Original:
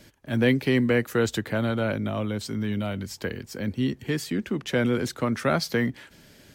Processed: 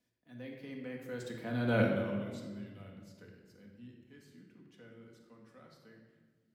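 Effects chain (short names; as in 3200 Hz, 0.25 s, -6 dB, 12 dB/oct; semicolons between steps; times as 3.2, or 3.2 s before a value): Doppler pass-by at 1.78, 19 m/s, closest 1.6 m; HPF 150 Hz 6 dB/oct; low shelf 220 Hz +3.5 dB; shoebox room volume 1500 m³, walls mixed, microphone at 1.9 m; gain -4.5 dB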